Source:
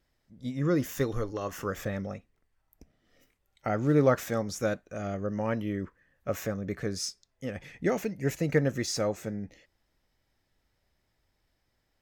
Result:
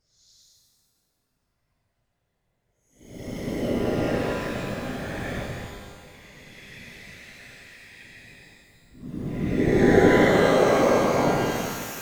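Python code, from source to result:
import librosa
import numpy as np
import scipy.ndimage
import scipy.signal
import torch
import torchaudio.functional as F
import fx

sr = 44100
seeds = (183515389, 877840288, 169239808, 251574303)

p1 = np.where(np.abs(x) >= 10.0 ** (-36.5 / 20.0), x, 0.0)
p2 = x + (p1 * 10.0 ** (-4.5 / 20.0))
p3 = fx.paulstretch(p2, sr, seeds[0], factor=15.0, window_s=0.05, from_s=7.21)
p4 = fx.whisperise(p3, sr, seeds[1])
y = fx.rev_shimmer(p4, sr, seeds[2], rt60_s=1.6, semitones=12, shimmer_db=-8, drr_db=1.0)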